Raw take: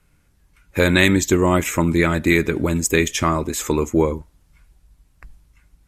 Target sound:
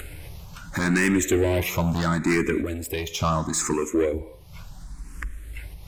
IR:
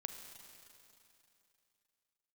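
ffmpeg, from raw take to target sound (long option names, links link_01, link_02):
-filter_complex "[0:a]asettb=1/sr,asplit=3[link_01][link_02][link_03];[link_01]atrim=end=3.734[link_04];[link_02]atrim=start=3.73:end=4.14,asetpts=PTS-STARTPTS,afade=type=in:duration=0.004:curve=qsin,afade=type=out:start_time=0.406:duration=0.004:curve=qsin,bass=frequency=250:gain=-13,treble=frequency=4000:gain=-1[link_05];[link_03]atrim=start=4.136[link_06];[link_04][link_05]acrossfade=duration=0.004:curve1=hsin:curve2=qsin[link_07];[link_07][link_06]acrossfade=duration=0.004:curve1=qsin:curve2=hsin,acompressor=mode=upward:threshold=-19dB:ratio=2.5,asplit=2[link_08][link_09];[1:a]atrim=start_sample=2205,afade=type=out:start_time=0.34:duration=0.01,atrim=end_sample=15435[link_10];[link_09][link_10]afir=irnorm=-1:irlink=0,volume=-7dB[link_11];[link_08][link_11]amix=inputs=2:normalize=0,asoftclip=type=tanh:threshold=-14.5dB,asettb=1/sr,asplit=3[link_12][link_13][link_14];[link_12]atrim=end=2.614[link_15];[link_13]atrim=start=2.61:end=3.2,asetpts=PTS-STARTPTS,afade=type=in:duration=0.004:curve=qsin,afade=type=out:start_time=0.586:duration=0.004:curve=qsin,acompressor=threshold=-24dB:ratio=6[link_16];[link_14]atrim=start=3.196[link_17];[link_15][link_16]acrossfade=duration=0.004:curve1=hsin:curve2=qsin[link_18];[link_18][link_17]acrossfade=duration=0.004:curve1=qsin:curve2=hsin,asplit=2[link_19][link_20];[link_20]afreqshift=0.73[link_21];[link_19][link_21]amix=inputs=2:normalize=1"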